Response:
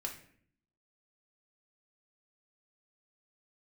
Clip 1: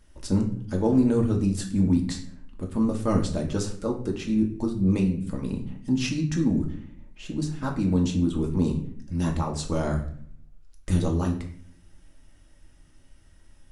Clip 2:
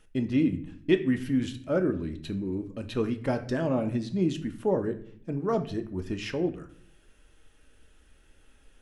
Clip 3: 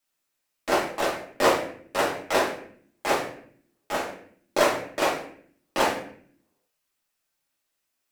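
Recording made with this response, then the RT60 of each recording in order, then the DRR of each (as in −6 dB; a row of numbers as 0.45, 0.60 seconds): 1; 0.60, 0.60, 0.55 seconds; 0.5, 6.5, −6.0 decibels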